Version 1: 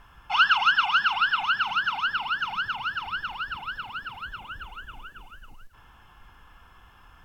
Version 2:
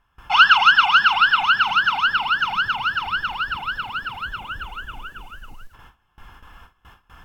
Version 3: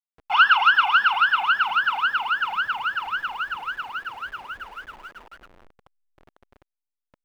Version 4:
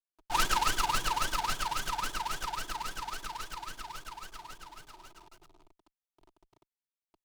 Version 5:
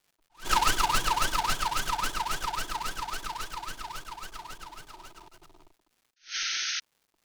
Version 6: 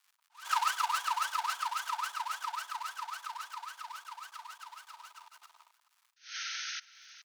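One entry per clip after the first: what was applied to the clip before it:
gate with hold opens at -42 dBFS; gain +7.5 dB
level-crossing sampler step -35.5 dBFS; tone controls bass -15 dB, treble -15 dB; gain -2.5 dB
minimum comb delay 3.2 ms; fixed phaser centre 360 Hz, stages 8; noise-modulated delay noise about 2900 Hz, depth 0.053 ms; gain -4 dB
painted sound noise, 6.16–6.8, 1300–6500 Hz -36 dBFS; crackle 370/s -61 dBFS; attack slew limiter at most 240 dB/s; gain +5 dB
ladder high-pass 890 Hz, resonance 45%; echo 0.421 s -21 dB; mismatched tape noise reduction encoder only

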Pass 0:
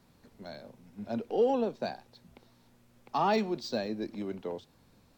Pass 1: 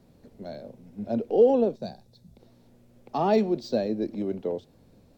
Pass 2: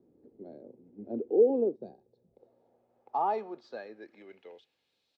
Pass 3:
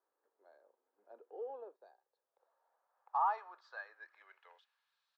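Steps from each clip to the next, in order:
spectral gain 1.76–2.4, 230–3400 Hz -9 dB; resonant low shelf 780 Hz +7.5 dB, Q 1.5; gain -1.5 dB
comb 2.4 ms, depth 30%; band-pass sweep 330 Hz -> 3600 Hz, 1.76–5.08
HPF 690 Hz 24 dB/oct; band shelf 1300 Hz +12 dB 1.1 oct; gain -7.5 dB

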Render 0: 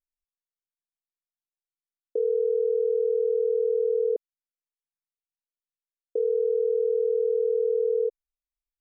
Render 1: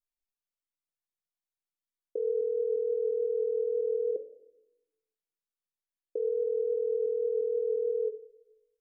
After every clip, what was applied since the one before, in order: flange 0.43 Hz, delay 6.5 ms, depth 7.8 ms, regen +81%; shoebox room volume 3200 m³, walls furnished, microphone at 0.98 m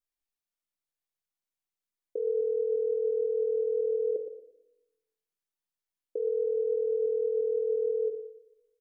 feedback echo 0.116 s, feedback 32%, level -10 dB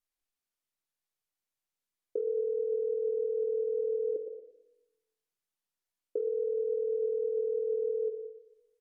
treble ducked by the level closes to 420 Hz, closed at -28.5 dBFS; gain +1 dB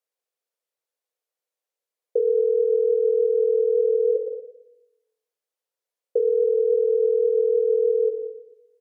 resonant high-pass 490 Hz, resonance Q 4.9

